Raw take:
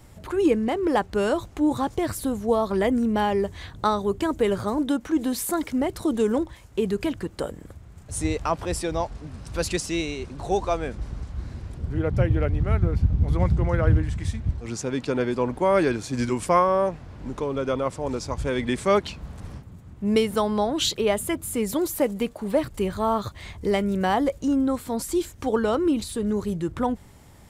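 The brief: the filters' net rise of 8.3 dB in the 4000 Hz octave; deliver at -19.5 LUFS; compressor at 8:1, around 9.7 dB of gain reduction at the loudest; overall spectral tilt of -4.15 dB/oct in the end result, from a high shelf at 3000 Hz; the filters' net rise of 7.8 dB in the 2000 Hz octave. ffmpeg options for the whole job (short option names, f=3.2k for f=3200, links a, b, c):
-af "equalizer=f=2k:t=o:g=6.5,highshelf=f=3k:g=7,equalizer=f=4k:t=o:g=3,acompressor=threshold=-23dB:ratio=8,volume=9dB"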